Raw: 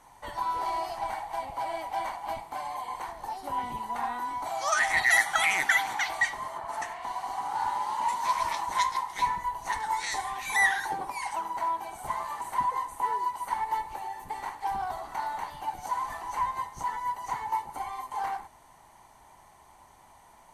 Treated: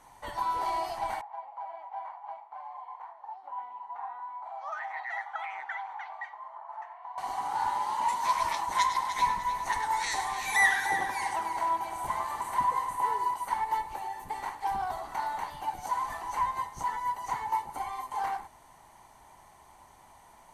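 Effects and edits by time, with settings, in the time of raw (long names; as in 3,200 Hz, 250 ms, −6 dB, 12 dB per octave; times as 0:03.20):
0:01.21–0:07.18: four-pole ladder band-pass 1,000 Hz, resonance 45%
0:08.68–0:13.34: echo machine with several playback heads 100 ms, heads first and third, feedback 48%, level −10.5 dB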